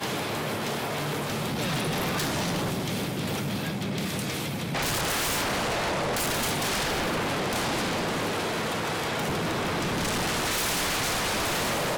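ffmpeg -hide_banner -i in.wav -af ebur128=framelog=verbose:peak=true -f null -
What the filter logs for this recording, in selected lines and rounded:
Integrated loudness:
  I:         -27.4 LUFS
  Threshold: -37.4 LUFS
Loudness range:
  LRA:         2.3 LU
  Threshold: -47.5 LUFS
  LRA low:   -28.7 LUFS
  LRA high:  -26.4 LUFS
True peak:
  Peak:      -19.7 dBFS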